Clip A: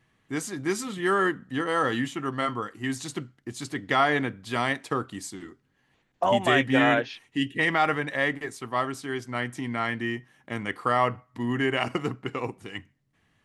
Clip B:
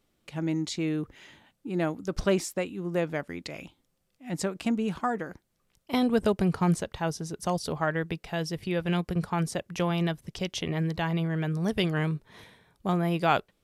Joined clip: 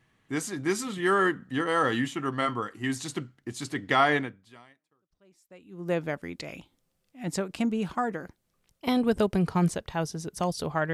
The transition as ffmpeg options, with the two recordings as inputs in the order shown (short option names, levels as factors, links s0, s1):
-filter_complex "[0:a]apad=whole_dur=10.93,atrim=end=10.93,atrim=end=5.91,asetpts=PTS-STARTPTS[s0];[1:a]atrim=start=1.21:end=7.99,asetpts=PTS-STARTPTS[s1];[s0][s1]acrossfade=d=1.76:c1=exp:c2=exp"